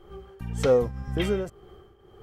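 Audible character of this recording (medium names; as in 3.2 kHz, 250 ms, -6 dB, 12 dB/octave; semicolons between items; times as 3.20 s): tremolo triangle 1.9 Hz, depth 75%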